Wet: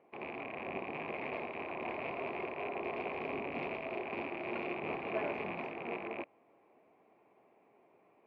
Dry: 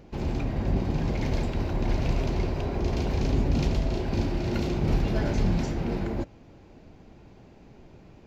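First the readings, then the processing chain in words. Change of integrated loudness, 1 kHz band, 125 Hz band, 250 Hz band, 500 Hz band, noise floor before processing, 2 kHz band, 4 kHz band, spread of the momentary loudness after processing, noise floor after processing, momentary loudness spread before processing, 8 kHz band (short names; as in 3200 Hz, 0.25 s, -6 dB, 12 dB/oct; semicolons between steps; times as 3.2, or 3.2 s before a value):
-11.5 dB, -3.0 dB, -28.0 dB, -15.0 dB, -6.5 dB, -52 dBFS, 0.0 dB, -12.5 dB, 4 LU, -68 dBFS, 4 LU, n/a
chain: rattling part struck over -30 dBFS, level -24 dBFS; speaker cabinet 400–2500 Hz, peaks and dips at 420 Hz +4 dB, 700 Hz +6 dB, 1100 Hz +8 dB, 1500 Hz -6 dB, 2300 Hz +6 dB; upward expander 1.5:1, over -41 dBFS; gain -5 dB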